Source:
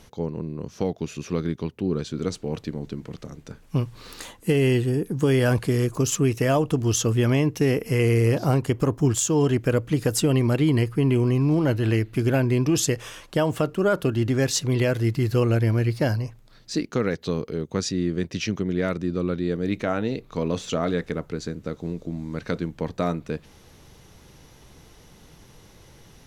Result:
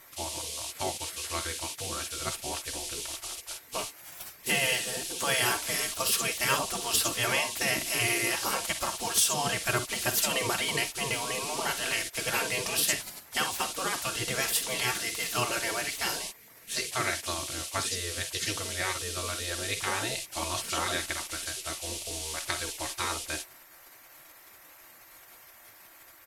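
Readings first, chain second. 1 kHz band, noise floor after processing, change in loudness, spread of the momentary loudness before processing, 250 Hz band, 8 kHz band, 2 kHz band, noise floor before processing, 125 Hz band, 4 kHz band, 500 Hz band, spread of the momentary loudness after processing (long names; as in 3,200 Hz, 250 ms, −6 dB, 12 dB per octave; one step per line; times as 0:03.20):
+0.5 dB, −54 dBFS, −5.5 dB, 11 LU, −18.0 dB, +3.0 dB, +3.0 dB, −52 dBFS, −19.5 dB, +5.0 dB, −12.0 dB, 8 LU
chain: high-pass filter 99 Hz 6 dB per octave
high-shelf EQ 5,800 Hz +8 dB
comb filter 4.4 ms, depth 70%
ambience of single reflections 47 ms −13 dB, 61 ms −15 dB
noise in a band 2,600–11,000 Hz −40 dBFS
gate on every frequency bin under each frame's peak −15 dB weak
level +2.5 dB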